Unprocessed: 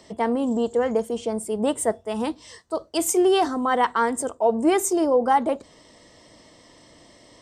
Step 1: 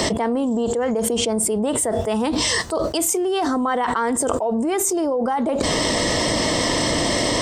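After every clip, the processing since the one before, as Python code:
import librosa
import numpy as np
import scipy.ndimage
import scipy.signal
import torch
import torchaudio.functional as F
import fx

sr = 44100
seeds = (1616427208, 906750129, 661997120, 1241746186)

y = fx.env_flatten(x, sr, amount_pct=100)
y = y * librosa.db_to_amplitude(-5.5)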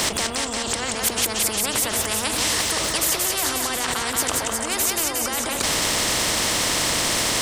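y = fx.echo_split(x, sr, split_hz=400.0, low_ms=83, high_ms=179, feedback_pct=52, wet_db=-7.5)
y = fx.spectral_comp(y, sr, ratio=4.0)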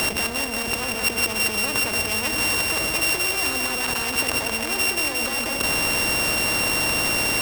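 y = np.r_[np.sort(x[:len(x) // 16 * 16].reshape(-1, 16), axis=1).ravel(), x[len(x) // 16 * 16:]]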